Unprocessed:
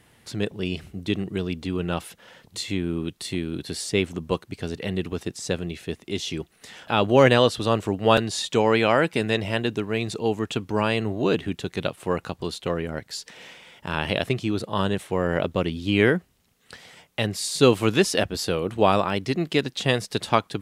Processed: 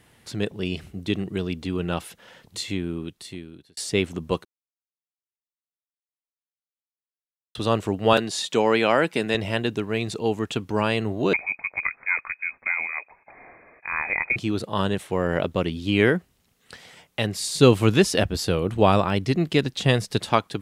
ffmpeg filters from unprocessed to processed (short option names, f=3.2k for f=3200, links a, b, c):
-filter_complex "[0:a]asettb=1/sr,asplit=3[a][b][c];[a]atrim=end=8.134[d];[b]atrim=start=8.13:end=9.35,asetpts=PTS-STARTPTS,afade=t=in:d=0.004:c=qsin,afade=t=out:st=1.216:d=0.004:c=qsin,highpass=160[e];[c]atrim=start=9.346[f];[d][e]acrossfade=d=0.004:c1=hsin:c2=qsin[g];[g][f]acrossfade=d=0.004:c1=qsin:c2=hsin,asettb=1/sr,asplit=3[h][i][j];[h]atrim=end=11.334[k];[i]atrim=start=11.33:end=14.36,asetpts=PTS-STARTPTS,afade=t=in:d=0.004:c=qsin,afade=t=out:st=3.026:d=0.004:c=qsin,lowpass=f=2.2k:t=q:w=0.5098,lowpass=f=2.2k:t=q:w=0.6013,lowpass=f=2.2k:t=q:w=0.9,lowpass=f=2.2k:t=q:w=2.563,afreqshift=-2600[l];[j]atrim=start=14.356[m];[k][l]acrossfade=d=0.004:c1=hsin:c2=qsin[n];[n][m]acrossfade=d=0.004:c1=qsin:c2=hsin,asettb=1/sr,asplit=3[o][p][q];[o]atrim=end=17.364[r];[p]atrim=start=17.36:end=20.19,asetpts=PTS-STARTPTS,afade=t=in:d=0.004:c=qsin,afade=t=out:st=2.826:d=0.004:c=qsin,lowshelf=f=140:g=10.5[s];[q]atrim=start=20.186[t];[r][s]acrossfade=d=0.004:c1=hsin:c2=qsin[u];[u][t]acrossfade=d=0.004:c1=qsin:c2=hsin,asplit=4[v][w][x][y];[v]atrim=end=3.77,asetpts=PTS-STARTPTS,afade=t=out:st=2.61:d=1.16[z];[w]atrim=start=3.77:end=4.45,asetpts=PTS-STARTPTS,afade=t=in:d=0.004:c=hsin,afade=t=out:st=0.676:d=0.004:c=hsin[aa];[x]atrim=start=4.45:end=7.55,asetpts=PTS-STARTPTS,volume=0[ab];[y]atrim=start=7.55,asetpts=PTS-STARTPTS,afade=t=in:d=0.004:c=hsin[ac];[z][aa][ab][ac]concat=n=4:v=0:a=1"